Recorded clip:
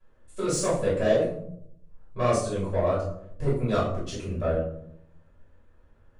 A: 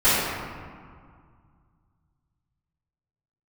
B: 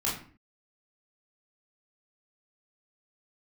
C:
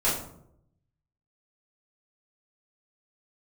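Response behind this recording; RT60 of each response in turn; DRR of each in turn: C; 2.0, 0.45, 0.75 seconds; −18.0, −6.0, −10.0 decibels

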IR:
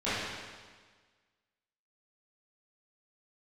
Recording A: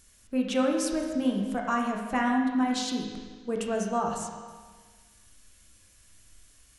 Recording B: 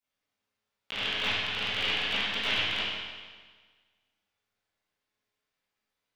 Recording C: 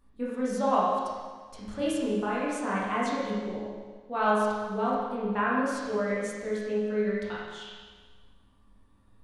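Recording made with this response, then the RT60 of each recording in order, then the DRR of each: B; 1.5, 1.5, 1.5 seconds; 0.0, −15.0, −8.0 decibels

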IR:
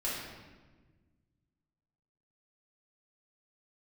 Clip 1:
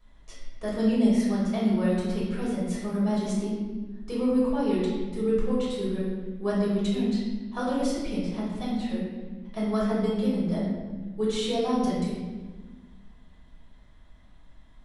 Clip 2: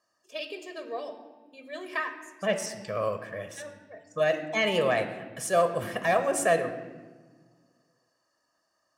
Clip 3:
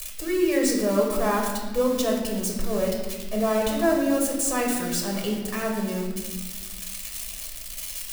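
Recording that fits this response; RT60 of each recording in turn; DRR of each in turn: 1; 1.4, 1.4, 1.4 seconds; −8.0, 7.5, −1.0 decibels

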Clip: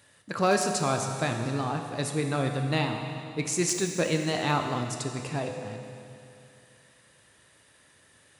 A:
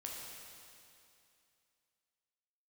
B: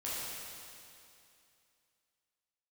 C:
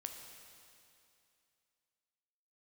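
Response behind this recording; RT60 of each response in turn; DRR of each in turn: C; 2.6, 2.6, 2.6 seconds; −2.5, −9.5, 3.5 decibels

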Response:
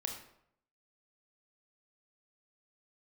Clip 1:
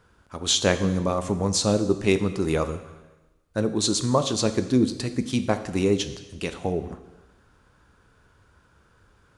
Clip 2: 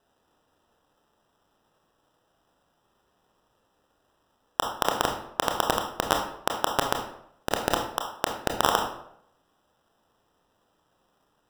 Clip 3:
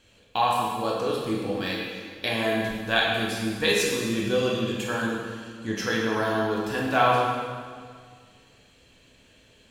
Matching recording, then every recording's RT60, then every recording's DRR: 2; 1.1, 0.70, 1.9 seconds; 9.0, 2.0, −4.0 decibels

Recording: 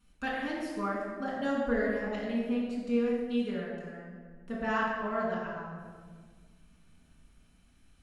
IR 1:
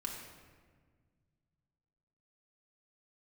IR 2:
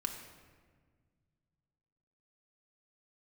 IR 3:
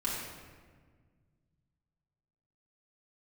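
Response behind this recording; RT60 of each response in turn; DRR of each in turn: 3; 1.6, 1.6, 1.6 seconds; −0.5, 3.5, −6.5 decibels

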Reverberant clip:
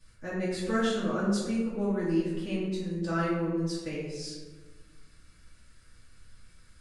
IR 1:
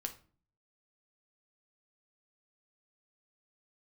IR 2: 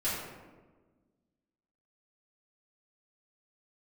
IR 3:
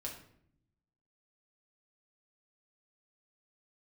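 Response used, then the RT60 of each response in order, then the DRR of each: 2; 0.40, 1.3, 0.65 seconds; 5.0, −11.5, −2.5 decibels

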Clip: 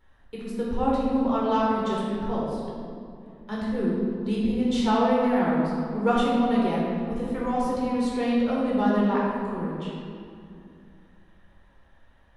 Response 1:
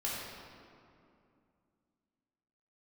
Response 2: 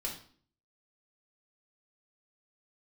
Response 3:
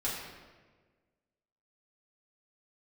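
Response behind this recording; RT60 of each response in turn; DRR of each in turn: 1; 2.5, 0.50, 1.4 seconds; −6.0, −2.5, −8.0 decibels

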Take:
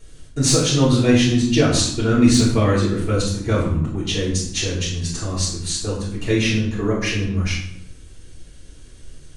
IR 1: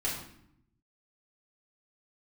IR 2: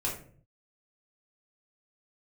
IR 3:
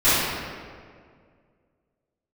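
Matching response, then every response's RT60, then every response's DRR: 1; 0.70, 0.50, 2.0 seconds; −7.5, −4.5, −18.5 decibels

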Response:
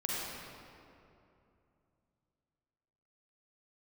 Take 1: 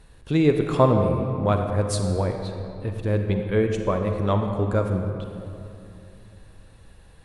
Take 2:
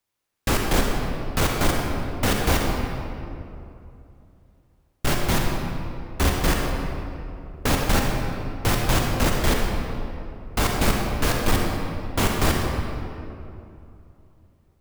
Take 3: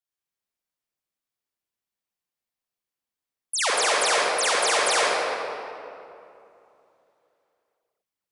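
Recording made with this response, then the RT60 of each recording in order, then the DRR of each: 3; 2.8, 2.7, 2.7 seconds; 4.5, 0.0, −6.0 decibels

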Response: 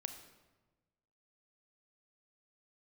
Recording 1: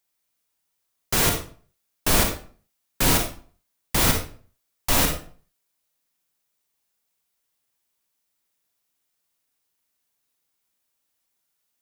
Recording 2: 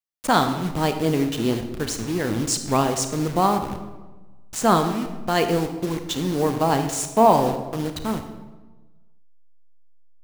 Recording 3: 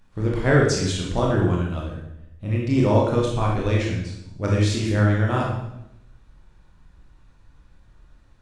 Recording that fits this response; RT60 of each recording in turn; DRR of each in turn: 2; 0.45, 1.2, 0.85 seconds; 3.0, 7.0, −3.5 decibels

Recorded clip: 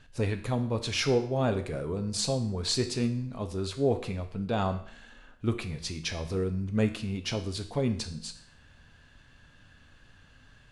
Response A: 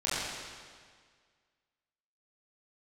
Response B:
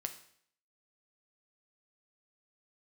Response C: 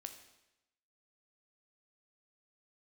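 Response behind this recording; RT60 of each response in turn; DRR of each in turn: B; 1.8, 0.60, 0.90 seconds; −11.0, 6.0, 6.0 decibels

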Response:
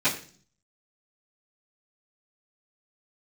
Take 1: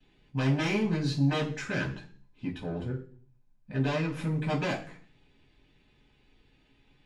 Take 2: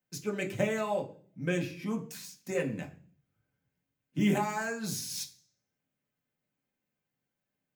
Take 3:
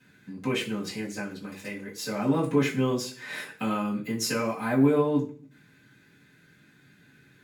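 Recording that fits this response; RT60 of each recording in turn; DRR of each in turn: 1; 0.45, 0.45, 0.45 seconds; −19.0, 0.0, −9.5 decibels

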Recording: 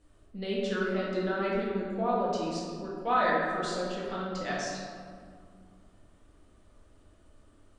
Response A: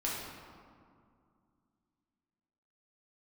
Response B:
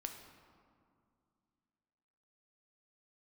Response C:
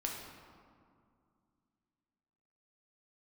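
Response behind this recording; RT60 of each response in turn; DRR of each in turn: A; 2.3, 2.3, 2.3 seconds; −6.0, 4.0, −1.5 decibels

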